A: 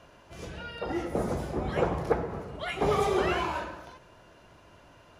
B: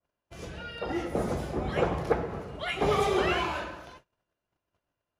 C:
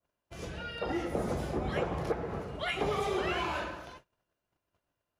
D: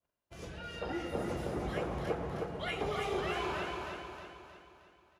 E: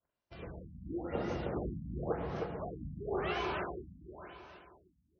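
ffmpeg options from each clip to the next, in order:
ffmpeg -i in.wav -af "agate=range=-31dB:threshold=-50dB:ratio=16:detection=peak,bandreject=frequency=950:width=29,adynamicequalizer=threshold=0.00631:dfrequency=3000:dqfactor=1:tfrequency=3000:tqfactor=1:attack=5:release=100:ratio=0.375:range=2:mode=boostabove:tftype=bell" out.wav
ffmpeg -i in.wav -af "acompressor=threshold=-28dB:ratio=6" out.wav
ffmpeg -i in.wav -af "aecho=1:1:313|626|939|1252|1565|1878:0.596|0.286|0.137|0.0659|0.0316|0.0152,volume=-4.5dB" out.wav
ffmpeg -i in.wav -af "afftfilt=real='re*lt(b*sr/1024,260*pow(6600/260,0.5+0.5*sin(2*PI*0.95*pts/sr)))':imag='im*lt(b*sr/1024,260*pow(6600/260,0.5+0.5*sin(2*PI*0.95*pts/sr)))':win_size=1024:overlap=0.75" out.wav

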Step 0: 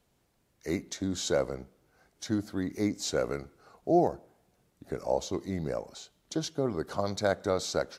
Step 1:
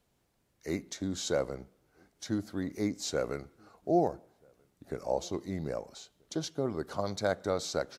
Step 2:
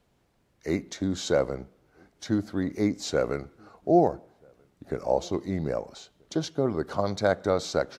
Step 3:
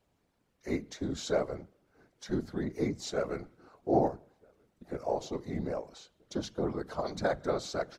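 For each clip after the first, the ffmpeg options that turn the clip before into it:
ffmpeg -i in.wav -filter_complex "[0:a]asplit=2[link_01][link_02];[link_02]adelay=1283,volume=-30dB,highshelf=frequency=4000:gain=-28.9[link_03];[link_01][link_03]amix=inputs=2:normalize=0,volume=-2.5dB" out.wav
ffmpeg -i in.wav -af "highshelf=frequency=5800:gain=-10.5,volume=6.5dB" out.wav
ffmpeg -i in.wav -af "bandreject=frequency=50:width_type=h:width=6,bandreject=frequency=100:width_type=h:width=6,bandreject=frequency=150:width_type=h:width=6,bandreject=frequency=200:width_type=h:width=6,afftfilt=real='hypot(re,im)*cos(2*PI*random(0))':imag='hypot(re,im)*sin(2*PI*random(1))':win_size=512:overlap=0.75" out.wav

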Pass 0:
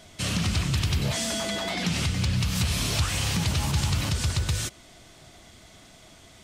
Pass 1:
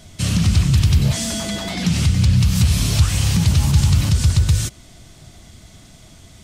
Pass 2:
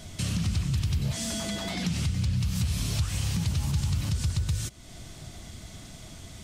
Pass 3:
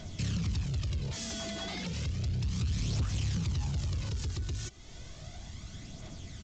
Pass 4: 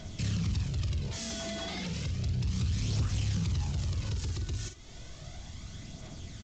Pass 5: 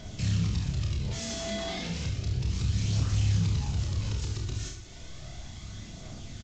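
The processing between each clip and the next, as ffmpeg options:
ffmpeg -i in.wav -af "bass=frequency=250:gain=11,treble=frequency=4000:gain=5,volume=1dB" out.wav
ffmpeg -i in.wav -af "acompressor=threshold=-35dB:ratio=2" out.wav
ffmpeg -i in.wav -af "aresample=16000,asoftclip=type=tanh:threshold=-26.5dB,aresample=44100,aphaser=in_gain=1:out_gain=1:delay=2.9:decay=0.41:speed=0.33:type=triangular,volume=-3.5dB" out.wav
ffmpeg -i in.wav -filter_complex "[0:a]asplit=2[link_01][link_02];[link_02]adelay=48,volume=-8dB[link_03];[link_01][link_03]amix=inputs=2:normalize=0" out.wav
ffmpeg -i in.wav -af "aecho=1:1:30|69|119.7|185.6|271.3:0.631|0.398|0.251|0.158|0.1" out.wav

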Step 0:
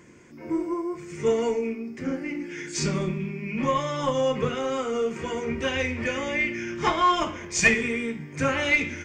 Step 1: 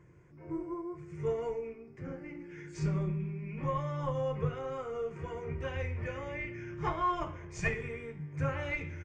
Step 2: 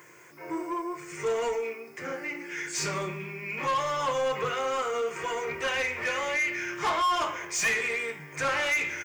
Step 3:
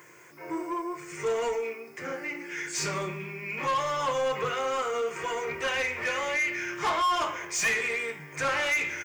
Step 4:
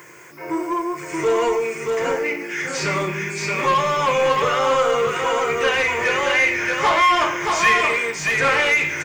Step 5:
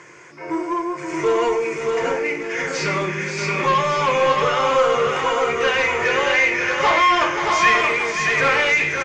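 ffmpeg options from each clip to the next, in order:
ffmpeg -i in.wav -af "firequalizer=gain_entry='entry(150,0);entry(230,-22);entry(330,-10);entry(1100,-10);entry(3500,-22)':delay=0.05:min_phase=1" out.wav
ffmpeg -i in.wav -filter_complex "[0:a]aemphasis=mode=production:type=riaa,asplit=2[link_01][link_02];[link_02]highpass=frequency=720:poles=1,volume=24dB,asoftclip=type=tanh:threshold=-17dB[link_03];[link_01][link_03]amix=inputs=2:normalize=0,lowpass=frequency=6500:poles=1,volume=-6dB,volume=-1.5dB" out.wav
ffmpeg -i in.wav -af anull out.wav
ffmpeg -i in.wav -filter_complex "[0:a]aecho=1:1:626:0.668,acrossover=split=4800[link_01][link_02];[link_02]acompressor=threshold=-46dB:ratio=4:attack=1:release=60[link_03];[link_01][link_03]amix=inputs=2:normalize=0,volume=9dB" out.wav
ffmpeg -i in.wav -af "lowpass=frequency=6800:width=0.5412,lowpass=frequency=6800:width=1.3066,aecho=1:1:529:0.398" out.wav

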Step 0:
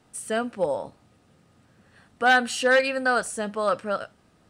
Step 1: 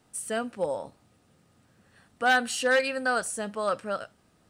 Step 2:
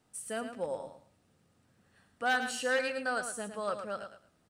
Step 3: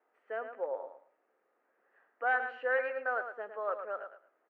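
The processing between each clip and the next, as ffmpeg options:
ffmpeg -i in.wav -af "highshelf=frequency=7400:gain=7.5,volume=-4dB" out.wav
ffmpeg -i in.wav -af "aecho=1:1:110|220|330:0.376|0.0827|0.0182,volume=-7dB" out.wav
ffmpeg -i in.wav -af "asuperpass=centerf=890:order=8:qfactor=0.52" out.wav

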